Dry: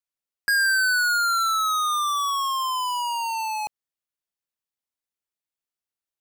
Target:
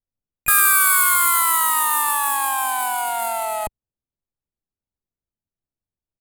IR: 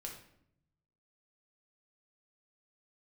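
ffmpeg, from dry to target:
-filter_complex "[0:a]asplit=4[link_01][link_02][link_03][link_04];[link_02]asetrate=33038,aresample=44100,atempo=1.33484,volume=-3dB[link_05];[link_03]asetrate=35002,aresample=44100,atempo=1.25992,volume=-8dB[link_06];[link_04]asetrate=66075,aresample=44100,atempo=0.66742,volume=-5dB[link_07];[link_01][link_05][link_06][link_07]amix=inputs=4:normalize=0,aemphasis=mode=reproduction:type=riaa,adynamicsmooth=sensitivity=4:basefreq=990,aexciter=amount=11.2:drive=9.9:freq=8500"

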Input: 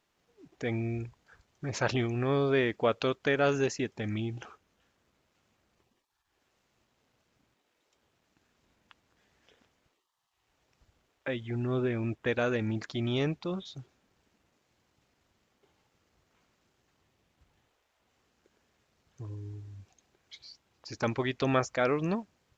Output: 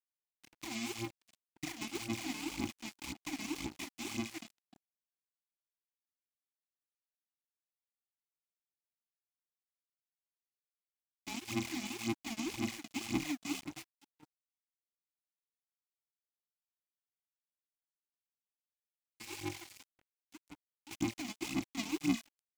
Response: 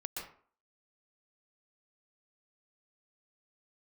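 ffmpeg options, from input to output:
-filter_complex "[0:a]lowshelf=frequency=500:gain=7,acompressor=threshold=-30dB:ratio=20,adynamicequalizer=threshold=0.00112:dfrequency=2600:dqfactor=1.4:tfrequency=2600:tqfactor=1.4:attack=5:release=100:ratio=0.375:range=3:mode=boostabove:tftype=bell,aresample=16000,acrusher=samples=35:mix=1:aa=0.000001,aresample=44100,crystalizer=i=6:c=0,asoftclip=type=tanh:threshold=-16dB,asplit=3[link_01][link_02][link_03];[link_01]bandpass=frequency=300:width_type=q:width=8,volume=0dB[link_04];[link_02]bandpass=frequency=870:width_type=q:width=8,volume=-6dB[link_05];[link_03]bandpass=frequency=2240:width_type=q:width=8,volume=-9dB[link_06];[link_04][link_05][link_06]amix=inputs=3:normalize=0,asplit=2[link_07][link_08];[link_08]aecho=0:1:464|928|1392:0.1|0.039|0.0152[link_09];[link_07][link_09]amix=inputs=2:normalize=0,aphaser=in_gain=1:out_gain=1:delay=4.7:decay=0.78:speed=1.9:type=sinusoidal,aeval=exprs='sgn(val(0))*max(abs(val(0))-0.00211,0)':channel_layout=same,crystalizer=i=5:c=0,volume=3dB"

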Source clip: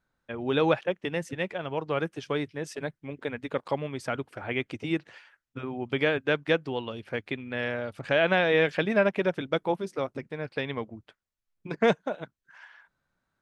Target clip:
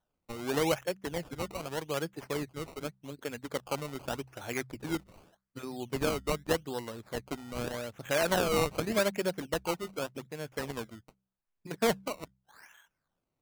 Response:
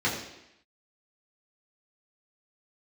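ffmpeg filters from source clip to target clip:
-af "acrusher=samples=18:mix=1:aa=0.000001:lfo=1:lforange=18:lforate=0.84,bandreject=frequency=64.4:width_type=h:width=4,bandreject=frequency=128.8:width_type=h:width=4,bandreject=frequency=193.2:width_type=h:width=4,volume=-5dB"

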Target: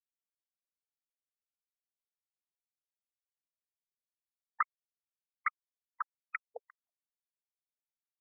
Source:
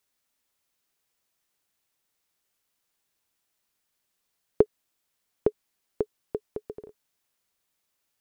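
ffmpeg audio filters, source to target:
ffmpeg -i in.wav -filter_complex "[0:a]aecho=1:1:3:0.47,acrossover=split=250[link_01][link_02];[link_02]acrusher=bits=3:mix=0:aa=0.5[link_03];[link_01][link_03]amix=inputs=2:normalize=0,asoftclip=type=tanh:threshold=-20dB,crystalizer=i=8:c=0,afftfilt=real='re*between(b*sr/1024,640*pow(1800/640,0.5+0.5*sin(2*PI*2.4*pts/sr))/1.41,640*pow(1800/640,0.5+0.5*sin(2*PI*2.4*pts/sr))*1.41)':imag='im*between(b*sr/1024,640*pow(1800/640,0.5+0.5*sin(2*PI*2.4*pts/sr))/1.41,640*pow(1800/640,0.5+0.5*sin(2*PI*2.4*pts/sr))*1.41)':win_size=1024:overlap=0.75,volume=4.5dB" out.wav

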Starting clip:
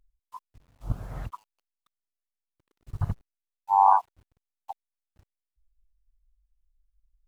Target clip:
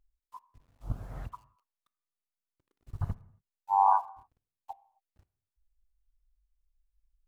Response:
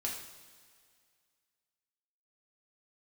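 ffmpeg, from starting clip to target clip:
-filter_complex "[0:a]asplit=2[link_01][link_02];[1:a]atrim=start_sample=2205,afade=type=out:start_time=0.33:duration=0.01,atrim=end_sample=14994,lowpass=2200[link_03];[link_02][link_03]afir=irnorm=-1:irlink=0,volume=-13.5dB[link_04];[link_01][link_04]amix=inputs=2:normalize=0,volume=-6dB"

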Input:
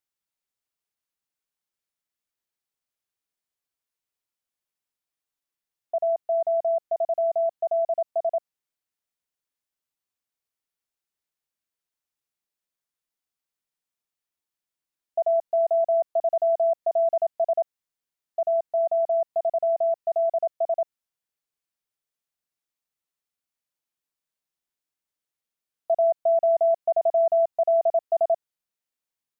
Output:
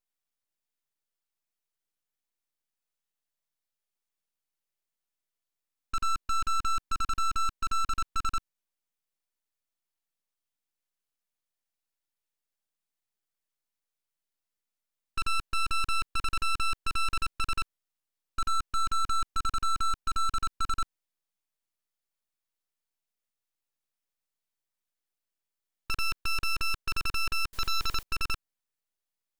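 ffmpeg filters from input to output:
ffmpeg -i in.wav -filter_complex "[0:a]asettb=1/sr,asplit=3[link_01][link_02][link_03];[link_01]atrim=end=27.534[link_04];[link_02]atrim=start=27.53:end=28.03,asetpts=PTS-STARTPTS,afade=type=in:duration=0.004:curve=qsin,afade=type=out:start_time=0.496:duration=0.004:curve=qsin,aeval=exprs='val(0)+0.5*0.0119*sgn(val(0))':channel_layout=same[link_05];[link_03]atrim=start=28.026[link_06];[link_04][link_05]acrossfade=duration=0.004:curve1=hsin:curve2=qsin[link_07];[link_07][link_06]acrossfade=duration=0.004:curve1=qsin:curve2=hsin,aeval=exprs='0.168*(cos(1*acos(clip(val(0)/0.168,-1,1)))-cos(1*PI/2))+0.075*(cos(7*acos(clip(val(0)/0.168,-1,1)))-cos(7*PI/2))':channel_layout=same,aeval=exprs='abs(val(0))':channel_layout=same,volume=-6dB" out.wav

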